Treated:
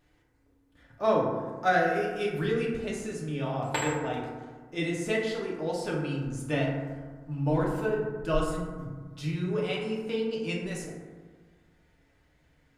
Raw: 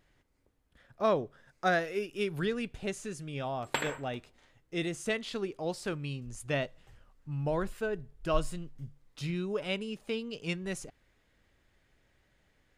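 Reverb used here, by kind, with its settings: FDN reverb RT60 1.5 s, low-frequency decay 1.25×, high-frequency decay 0.35×, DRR -4 dB; trim -2 dB

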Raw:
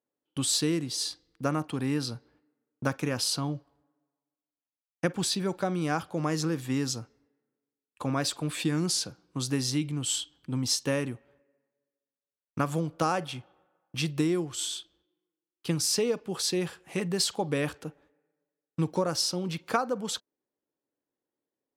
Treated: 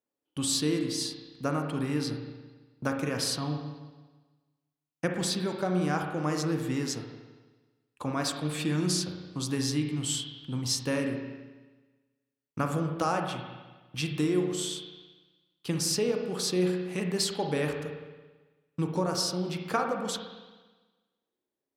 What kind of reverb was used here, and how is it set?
spring tank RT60 1.3 s, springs 33/55 ms, chirp 60 ms, DRR 3 dB; trim -2 dB

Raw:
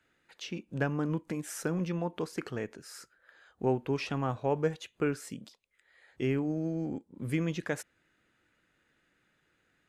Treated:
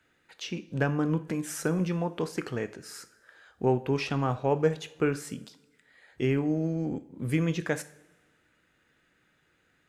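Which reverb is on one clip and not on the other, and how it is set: two-slope reverb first 0.46 s, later 1.5 s, from -15 dB, DRR 11.5 dB; trim +3.5 dB

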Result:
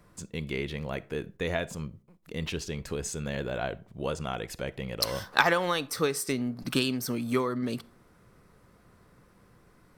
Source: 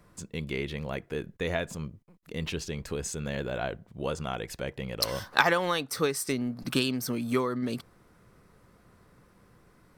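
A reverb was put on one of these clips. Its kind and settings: algorithmic reverb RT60 0.45 s, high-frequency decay 0.45×, pre-delay 5 ms, DRR 19.5 dB

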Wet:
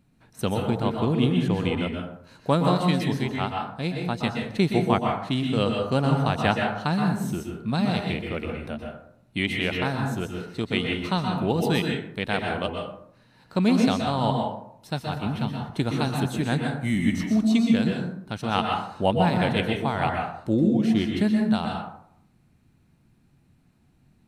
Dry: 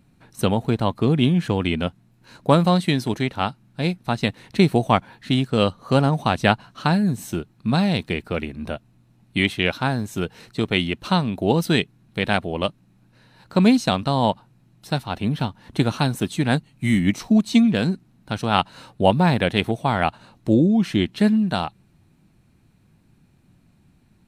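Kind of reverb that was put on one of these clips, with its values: plate-style reverb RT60 0.67 s, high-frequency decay 0.5×, pre-delay 110 ms, DRR 1 dB; trim -6 dB

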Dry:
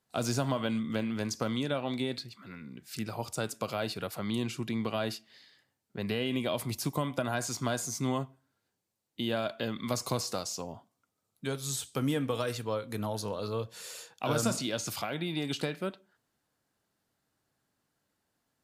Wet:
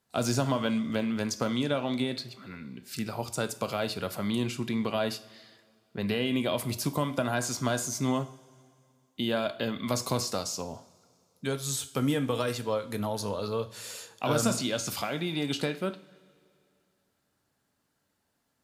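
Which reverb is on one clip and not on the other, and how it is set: two-slope reverb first 0.45 s, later 2.5 s, from -17 dB, DRR 11 dB; trim +2.5 dB

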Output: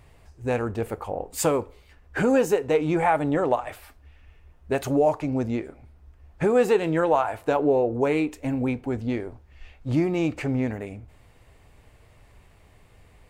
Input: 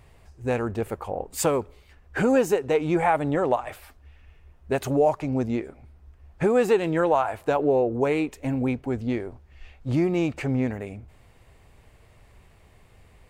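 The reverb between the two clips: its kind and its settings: FDN reverb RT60 0.34 s, low-frequency decay 0.8×, high-frequency decay 0.8×, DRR 14 dB

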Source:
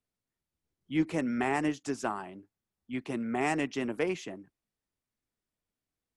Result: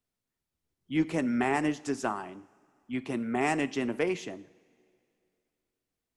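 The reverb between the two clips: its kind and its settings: two-slope reverb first 0.63 s, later 2.6 s, from -16 dB, DRR 15 dB; trim +1.5 dB

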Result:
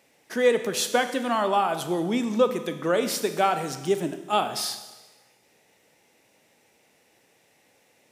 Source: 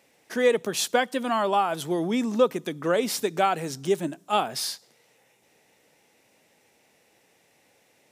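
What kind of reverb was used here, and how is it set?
Schroeder reverb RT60 1.2 s, combs from 26 ms, DRR 9 dB

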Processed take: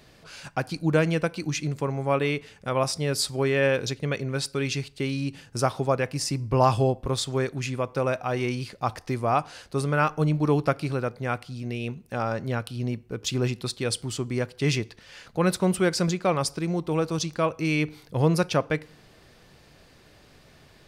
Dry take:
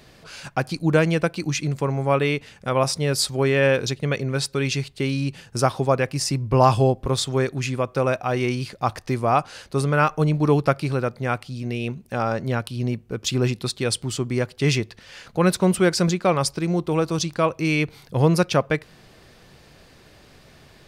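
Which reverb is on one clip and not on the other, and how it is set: FDN reverb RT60 0.56 s, low-frequency decay 0.8×, high-frequency decay 0.75×, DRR 19 dB; trim -4 dB

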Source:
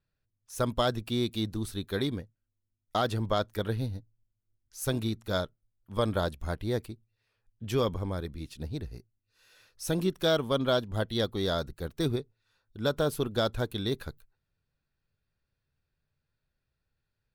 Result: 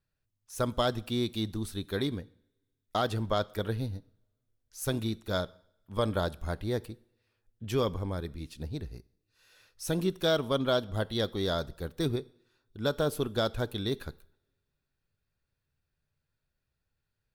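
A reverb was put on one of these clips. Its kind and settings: two-slope reverb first 0.63 s, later 2.1 s, from -26 dB, DRR 19.5 dB; trim -1 dB

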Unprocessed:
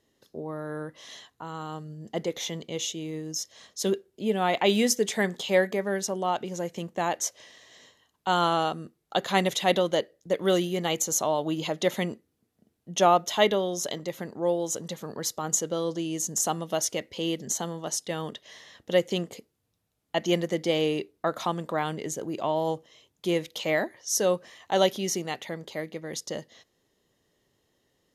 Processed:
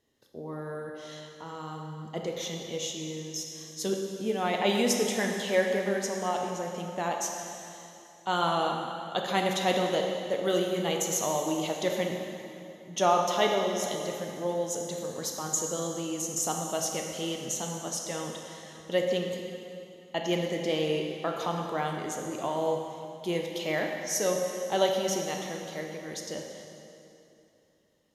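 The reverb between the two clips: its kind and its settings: plate-style reverb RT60 2.8 s, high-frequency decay 0.85×, DRR 1 dB; trim -4.5 dB

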